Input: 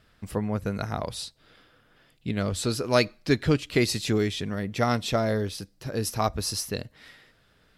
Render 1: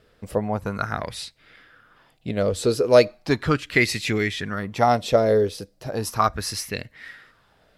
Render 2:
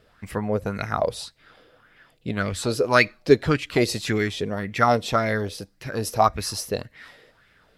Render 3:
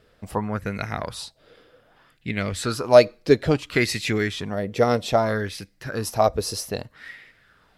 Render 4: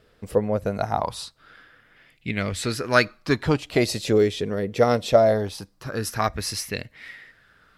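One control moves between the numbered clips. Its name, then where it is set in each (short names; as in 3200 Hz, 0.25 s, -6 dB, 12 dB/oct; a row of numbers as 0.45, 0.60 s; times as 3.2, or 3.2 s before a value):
LFO bell, rate: 0.37, 1.8, 0.62, 0.22 Hz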